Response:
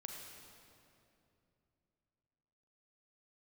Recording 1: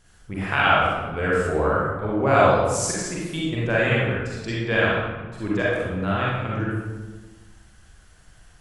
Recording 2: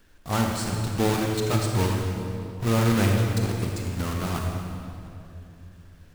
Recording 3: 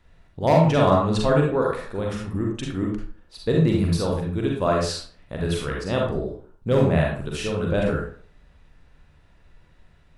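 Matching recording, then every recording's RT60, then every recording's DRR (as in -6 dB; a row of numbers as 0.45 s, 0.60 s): 2; 1.3 s, 2.8 s, 0.45 s; -6.5 dB, 0.5 dB, -1.5 dB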